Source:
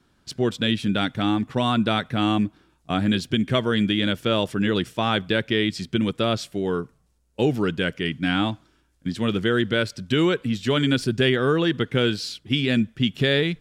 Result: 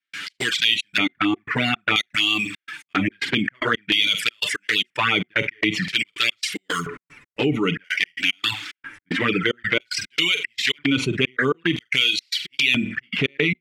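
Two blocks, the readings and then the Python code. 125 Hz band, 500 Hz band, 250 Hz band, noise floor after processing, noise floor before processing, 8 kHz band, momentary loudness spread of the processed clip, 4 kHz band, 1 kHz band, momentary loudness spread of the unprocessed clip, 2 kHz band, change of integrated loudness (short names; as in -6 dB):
-6.0 dB, -5.0 dB, -4.0 dB, -81 dBFS, -64 dBFS, +7.5 dB, 8 LU, +5.5 dB, -1.0 dB, 6 LU, +7.0 dB, +1.5 dB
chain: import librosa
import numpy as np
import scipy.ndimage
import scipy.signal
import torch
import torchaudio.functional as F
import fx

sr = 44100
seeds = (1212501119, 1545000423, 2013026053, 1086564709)

p1 = fx.sample_hold(x, sr, seeds[0], rate_hz=7900.0, jitter_pct=0)
p2 = x + (p1 * 10.0 ** (-7.0 / 20.0))
p3 = p2 + 0.5 * np.pad(p2, (int(6.8 * sr / 1000.0), 0))[:len(p2)]
p4 = fx.room_flutter(p3, sr, wall_m=8.0, rt60_s=0.23)
p5 = fx.step_gate(p4, sr, bpm=112, pattern='.x.xxx.x.x.xx', floor_db=-60.0, edge_ms=4.5)
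p6 = fx.curve_eq(p5, sr, hz=(240.0, 370.0, 720.0, 2100.0, 4000.0), db=(0, -2, -16, 14, -1))
p7 = fx.env_flanger(p6, sr, rest_ms=10.6, full_db=-15.5)
p8 = fx.dereverb_blind(p7, sr, rt60_s=0.87)
p9 = fx.filter_lfo_bandpass(p8, sr, shape='square', hz=0.51, low_hz=980.0, high_hz=4700.0, q=0.86)
p10 = fx.env_flatten(p9, sr, amount_pct=70)
y = p10 * 10.0 ** (4.0 / 20.0)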